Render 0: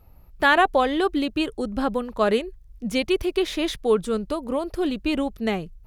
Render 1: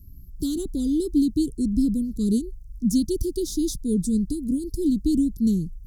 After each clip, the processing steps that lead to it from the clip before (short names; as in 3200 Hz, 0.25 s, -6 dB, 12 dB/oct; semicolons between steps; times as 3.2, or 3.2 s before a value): inverse Chebyshev band-stop 610–2600 Hz, stop band 50 dB; gain +7.5 dB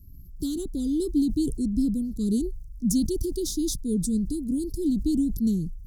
sustainer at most 57 dB/s; gain -3 dB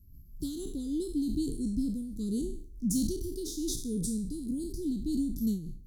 spectral trails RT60 0.51 s; noise-modulated level, depth 65%; gain -4.5 dB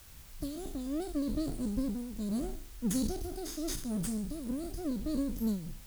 minimum comb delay 0.61 ms; added noise white -55 dBFS; gain -1.5 dB